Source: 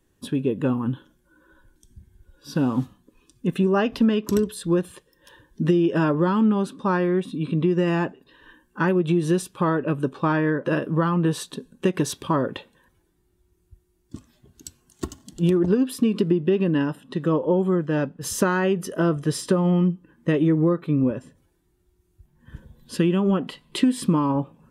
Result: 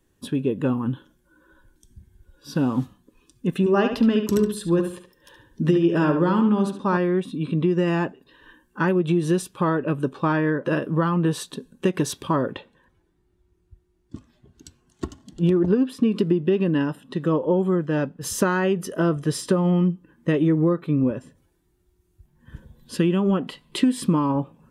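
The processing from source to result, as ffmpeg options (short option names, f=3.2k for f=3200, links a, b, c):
-filter_complex "[0:a]asettb=1/sr,asplit=3[a][b][c];[a]atrim=end=3.594[d];[b]atrim=start=3.59:end=6.97,asetpts=PTS-STARTPTS,afade=t=in:d=0.004:c=qsin,afade=t=out:st=3.376:d=0.004:c=qsin,asplit=2[e][f];[f]adelay=71,lowpass=f=4k:p=1,volume=-6.5dB,asplit=2[g][h];[h]adelay=71,lowpass=f=4k:p=1,volume=0.32,asplit=2[i][j];[j]adelay=71,lowpass=f=4k:p=1,volume=0.32,asplit=2[k][l];[l]adelay=71,lowpass=f=4k:p=1,volume=0.32[m];[e][g][i][k][m]amix=inputs=5:normalize=0,atrim=end_sample=149058[n];[c]atrim=start=6.966[o];[d][n]acrossfade=d=0.004:c1=hsin:c2=qsin[p];[p][o]acrossfade=d=0.004:c1=qsin:c2=hsin,asettb=1/sr,asplit=3[q][r][s];[q]atrim=end=12.534[t];[r]atrim=start=12.53:end=16.12,asetpts=PTS-STARTPTS,afade=t=in:d=0.004:c=qsin,afade=t=out:st=3.586:d=0.004:c=qsin,aemphasis=mode=reproduction:type=50fm[u];[s]atrim=start=16.116[v];[t][u]acrossfade=d=0.004:c1=hsin:c2=qsin[w];[w][v]acrossfade=d=0.004:c1=qsin:c2=hsin"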